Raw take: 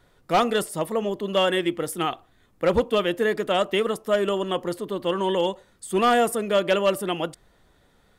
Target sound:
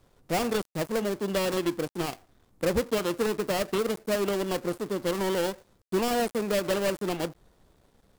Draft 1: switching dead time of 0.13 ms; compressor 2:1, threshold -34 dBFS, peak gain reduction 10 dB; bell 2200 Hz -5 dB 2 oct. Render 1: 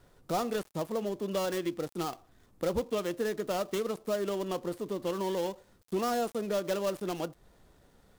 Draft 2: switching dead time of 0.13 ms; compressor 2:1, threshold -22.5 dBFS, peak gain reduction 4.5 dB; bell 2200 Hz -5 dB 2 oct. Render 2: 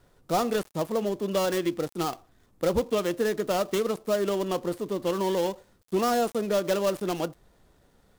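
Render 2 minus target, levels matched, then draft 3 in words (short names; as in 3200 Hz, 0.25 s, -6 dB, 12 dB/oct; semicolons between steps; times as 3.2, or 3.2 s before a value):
switching dead time: distortion -8 dB
switching dead time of 0.37 ms; compressor 2:1, threshold -22.5 dBFS, peak gain reduction 4 dB; bell 2200 Hz -5 dB 2 oct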